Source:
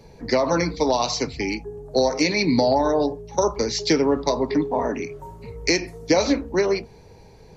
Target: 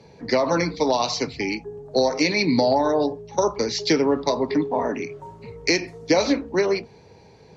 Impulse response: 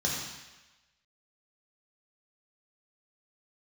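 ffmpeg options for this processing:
-af "highpass=100,lowpass=4200,aemphasis=mode=production:type=cd"

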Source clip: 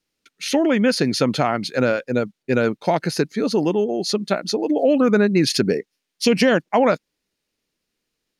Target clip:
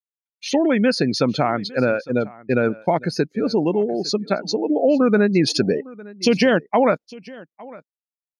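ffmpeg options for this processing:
ffmpeg -i in.wav -filter_complex "[0:a]agate=range=-33dB:threshold=-29dB:ratio=3:detection=peak,afftdn=noise_reduction=19:noise_floor=-30,asplit=2[link_01][link_02];[link_02]aecho=0:1:856:0.0841[link_03];[link_01][link_03]amix=inputs=2:normalize=0" out.wav

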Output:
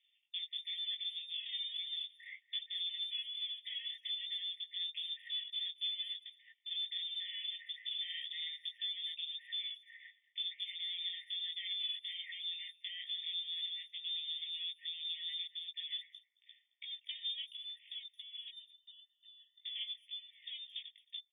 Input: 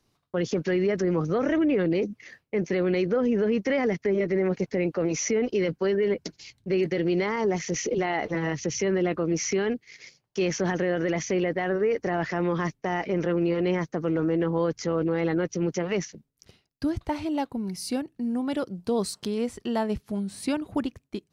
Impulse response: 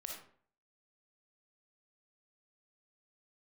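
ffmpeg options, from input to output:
-filter_complex "[0:a]lowshelf=frequency=380:gain=8,acompressor=threshold=-32dB:ratio=16,aeval=exprs='clip(val(0),-1,0.0112)':channel_layout=same,asplit=3[link_01][link_02][link_03];[link_01]afade=type=out:start_time=18.48:duration=0.02[link_04];[link_02]asplit=3[link_05][link_06][link_07];[link_05]bandpass=frequency=300:width_type=q:width=8,volume=0dB[link_08];[link_06]bandpass=frequency=870:width_type=q:width=8,volume=-6dB[link_09];[link_07]bandpass=frequency=2240:width_type=q:width=8,volume=-9dB[link_10];[link_08][link_09][link_10]amix=inputs=3:normalize=0,afade=type=in:start_time=18.48:duration=0.02,afade=type=out:start_time=19.6:duration=0.02[link_11];[link_03]afade=type=in:start_time=19.6:duration=0.02[link_12];[link_04][link_11][link_12]amix=inputs=3:normalize=0,flanger=delay=15.5:depth=3.9:speed=1.7,lowpass=frequency=3300:width_type=q:width=0.5098,lowpass=frequency=3300:width_type=q:width=0.6013,lowpass=frequency=3300:width_type=q:width=0.9,lowpass=frequency=3300:width_type=q:width=2.563,afreqshift=-3900,asplit=2[link_13][link_14];[link_14]adelay=220,highpass=300,lowpass=3400,asoftclip=type=hard:threshold=-39dB,volume=-20dB[link_15];[link_13][link_15]amix=inputs=2:normalize=0,afftfilt=real='re*eq(mod(floor(b*sr/1024/1800),2),1)':imag='im*eq(mod(floor(b*sr/1024/1800),2),1)':win_size=1024:overlap=0.75,volume=1dB"

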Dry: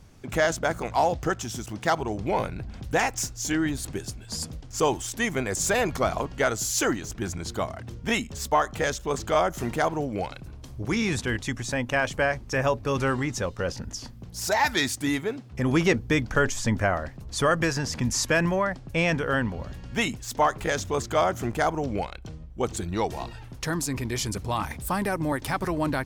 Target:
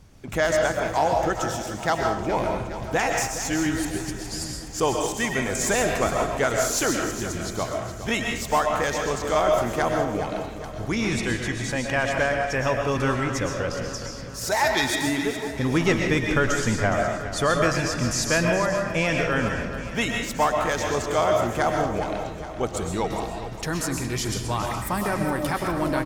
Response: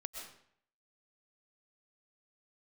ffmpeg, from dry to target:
-filter_complex "[0:a]aecho=1:1:415|830|1245|1660|2075|2490:0.251|0.141|0.0788|0.0441|0.0247|0.0138[link_01];[1:a]atrim=start_sample=2205[link_02];[link_01][link_02]afir=irnorm=-1:irlink=0,volume=4dB"

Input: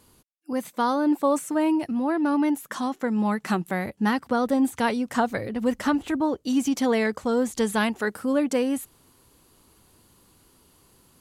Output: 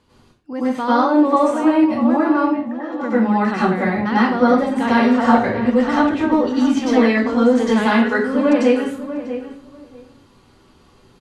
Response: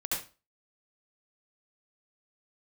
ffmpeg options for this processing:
-filter_complex "[0:a]lowpass=4100,acontrast=44,asplit=3[link_01][link_02][link_03];[link_01]afade=type=out:start_time=2.41:duration=0.02[link_04];[link_02]asplit=3[link_05][link_06][link_07];[link_05]bandpass=frequency=530:width_type=q:width=8,volume=0dB[link_08];[link_06]bandpass=frequency=1840:width_type=q:width=8,volume=-6dB[link_09];[link_07]bandpass=frequency=2480:width_type=q:width=8,volume=-9dB[link_10];[link_08][link_09][link_10]amix=inputs=3:normalize=0,afade=type=in:start_time=2.41:duration=0.02,afade=type=out:start_time=2.9:duration=0.02[link_11];[link_03]afade=type=in:start_time=2.9:duration=0.02[link_12];[link_04][link_11][link_12]amix=inputs=3:normalize=0,asettb=1/sr,asplit=3[link_13][link_14][link_15];[link_13]atrim=end=4.864[link_16];[link_14]atrim=start=4.86:end=5.39,asetpts=PTS-STARTPTS,afade=type=in:duration=0.004:curve=qsin,afade=type=out:start_time=0.526:duration=0.004:curve=qsin,asplit=2[link_17][link_18];[link_18]adelay=48,volume=-6dB[link_19];[link_17][link_19]amix=inputs=2:normalize=0,atrim=end_sample=23373[link_20];[link_15]atrim=start=5.386[link_21];[link_16][link_20]acrossfade=duration=0.004:curve1=hsin:curve2=qsin[link_22];[link_22][link_21]acrossfade=duration=0.004:curve1=qsin:curve2=hsin,asettb=1/sr,asplit=3[link_23][link_24][link_25];[link_23]atrim=end=6.094[link_26];[link_24]atrim=start=6.09:end=6.85,asetpts=PTS-STARTPTS,afade=type=in:duration=0.004:curve=qsin,afade=type=out:start_time=0.756:duration=0.004:curve=qsin,asoftclip=type=hard:threshold=-11dB[link_27];[link_25]atrim=start=6.846[link_28];[link_26][link_27]acrossfade=duration=0.004:curve1=hsin:curve2=qsin[link_29];[link_29][link_28]acrossfade=duration=0.004:curve1=qsin:curve2=hsin,asplit=2[link_30][link_31];[link_31]adelay=643,lowpass=frequency=2000:poles=1,volume=-11dB,asplit=2[link_32][link_33];[link_33]adelay=643,lowpass=frequency=2000:poles=1,volume=0.17[link_34];[link_30][link_32][link_34]amix=inputs=3:normalize=0[link_35];[1:a]atrim=start_sample=2205,asetrate=32193,aresample=44100[link_36];[link_35][link_36]afir=irnorm=-1:irlink=0,volume=-4.5dB"

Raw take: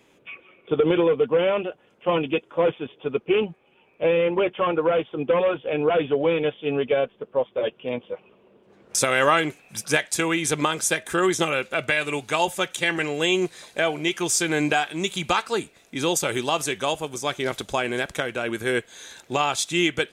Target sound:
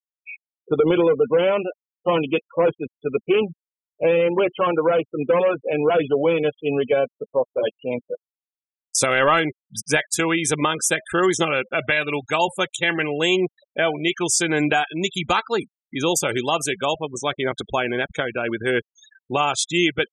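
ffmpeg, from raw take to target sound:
ffmpeg -i in.wav -af "acontrast=78,afftdn=noise_reduction=14:noise_floor=-38,afftfilt=real='re*gte(hypot(re,im),0.0631)':imag='im*gte(hypot(re,im),0.0631)':win_size=1024:overlap=0.75,volume=-4dB" out.wav

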